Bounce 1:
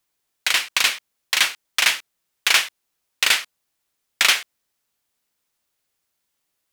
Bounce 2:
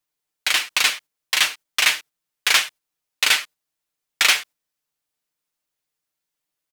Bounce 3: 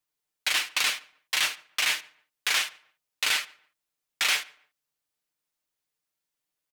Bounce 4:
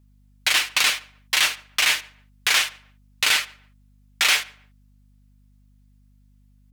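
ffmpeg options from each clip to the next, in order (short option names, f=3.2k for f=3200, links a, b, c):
-af "aecho=1:1:6.6:0.57,agate=range=-7dB:threshold=-37dB:ratio=16:detection=peak,volume=-1dB"
-filter_complex "[0:a]alimiter=limit=-11dB:level=0:latency=1:release=15,asplit=2[a][b];[b]adelay=143,lowpass=f=2.1k:p=1,volume=-22dB,asplit=2[c][d];[d]adelay=143,lowpass=f=2.1k:p=1,volume=0.28[e];[a][c][e]amix=inputs=3:normalize=0,volume=-3dB"
-af "aeval=exprs='val(0)+0.000891*(sin(2*PI*50*n/s)+sin(2*PI*2*50*n/s)/2+sin(2*PI*3*50*n/s)/3+sin(2*PI*4*50*n/s)/4+sin(2*PI*5*50*n/s)/5)':c=same,volume=6dB"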